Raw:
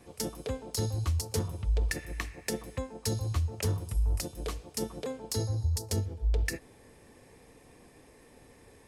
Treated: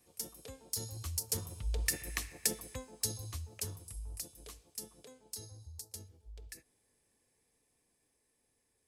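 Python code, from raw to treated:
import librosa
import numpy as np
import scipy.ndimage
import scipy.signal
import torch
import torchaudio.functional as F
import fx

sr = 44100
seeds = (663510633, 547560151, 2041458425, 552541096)

y = fx.doppler_pass(x, sr, speed_mps=6, closest_m=3.4, pass_at_s=2.13)
y = librosa.effects.preemphasis(y, coef=0.8, zi=[0.0])
y = y * 10.0 ** (8.0 / 20.0)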